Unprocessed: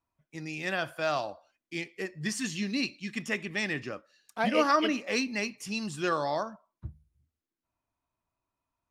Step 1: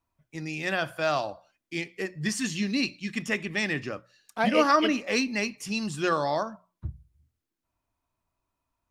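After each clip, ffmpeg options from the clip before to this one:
-af "lowshelf=f=90:g=7,bandreject=f=60:t=h:w=6,bandreject=f=120:t=h:w=6,bandreject=f=180:t=h:w=6,volume=3dB"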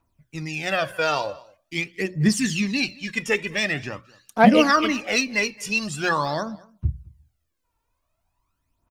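-af "aphaser=in_gain=1:out_gain=1:delay=2.3:decay=0.64:speed=0.45:type=triangular,aecho=1:1:216:0.0668,volume=3.5dB"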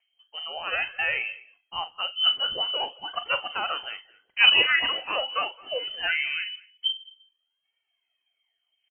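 -filter_complex "[0:a]asplit=2[a][b];[b]adelay=41,volume=-13dB[c];[a][c]amix=inputs=2:normalize=0,lowpass=f=2.7k:t=q:w=0.5098,lowpass=f=2.7k:t=q:w=0.6013,lowpass=f=2.7k:t=q:w=0.9,lowpass=f=2.7k:t=q:w=2.563,afreqshift=-3200,volume=-4dB"

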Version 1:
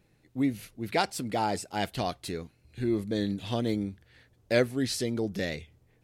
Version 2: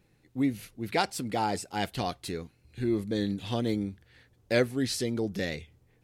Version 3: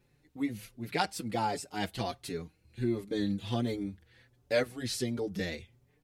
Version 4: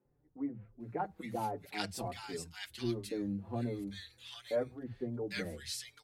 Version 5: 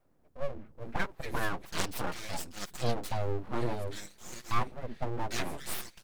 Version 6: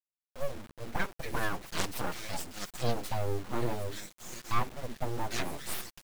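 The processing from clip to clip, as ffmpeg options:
-af "bandreject=f=630:w=12"
-filter_complex "[0:a]asplit=2[a][b];[b]adelay=5.4,afreqshift=1.4[c];[a][c]amix=inputs=2:normalize=1"
-filter_complex "[0:a]acrossover=split=170|1300[a][b][c];[a]adelay=50[d];[c]adelay=800[e];[d][b][e]amix=inputs=3:normalize=0,volume=-4dB"
-af "aeval=exprs='abs(val(0))':c=same,volume=7.5dB"
-af "acrusher=bits=7:mix=0:aa=0.000001"

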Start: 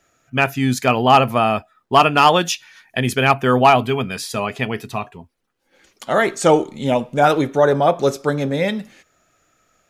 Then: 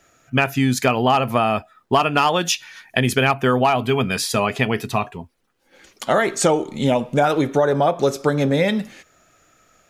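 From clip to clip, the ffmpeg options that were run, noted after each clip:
-af "acompressor=threshold=-19dB:ratio=6,volume=5dB"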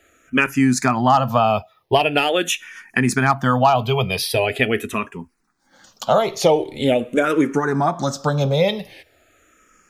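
-filter_complex "[0:a]asplit=2[a][b];[b]afreqshift=-0.43[c];[a][c]amix=inputs=2:normalize=1,volume=3.5dB"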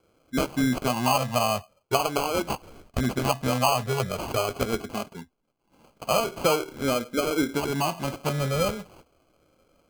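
-af "acrusher=samples=24:mix=1:aa=0.000001,volume=-7.5dB"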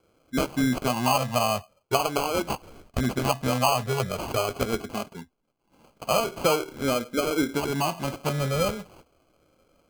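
-af anull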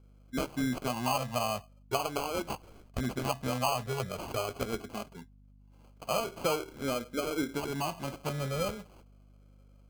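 -af "aeval=exprs='val(0)+0.00355*(sin(2*PI*50*n/s)+sin(2*PI*2*50*n/s)/2+sin(2*PI*3*50*n/s)/3+sin(2*PI*4*50*n/s)/4+sin(2*PI*5*50*n/s)/5)':c=same,volume=-7.5dB"

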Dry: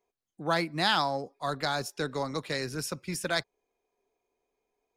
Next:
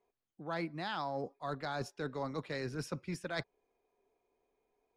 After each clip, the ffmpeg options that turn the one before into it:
-af "aemphasis=mode=reproduction:type=75fm,areverse,acompressor=threshold=-36dB:ratio=6,areverse,volume=1dB"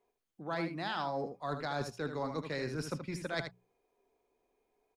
-af "bandreject=f=60:t=h:w=6,bandreject=f=120:t=h:w=6,bandreject=f=180:t=h:w=6,aecho=1:1:77:0.398,volume=1.5dB"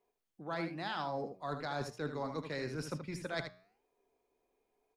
-af "flanger=delay=6.5:depth=4.8:regen=90:speed=1:shape=sinusoidal,volume=2.5dB"

